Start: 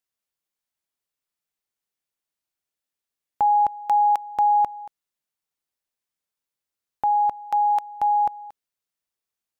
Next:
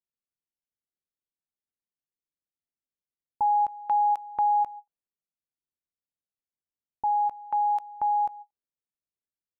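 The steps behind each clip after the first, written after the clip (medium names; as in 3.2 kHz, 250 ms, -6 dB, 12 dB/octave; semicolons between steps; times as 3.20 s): level-controlled noise filter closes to 390 Hz, open at -18 dBFS; endings held to a fixed fall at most 590 dB/s; trim -4.5 dB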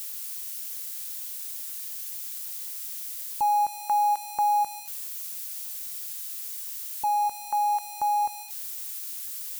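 zero-crossing glitches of -27 dBFS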